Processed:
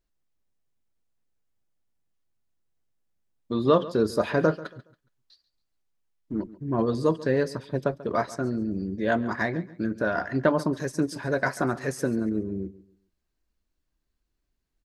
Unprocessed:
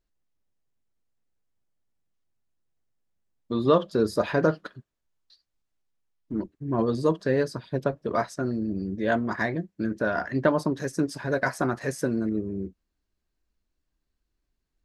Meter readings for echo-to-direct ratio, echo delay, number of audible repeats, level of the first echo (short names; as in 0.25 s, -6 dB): -17.5 dB, 0.139 s, 2, -18.0 dB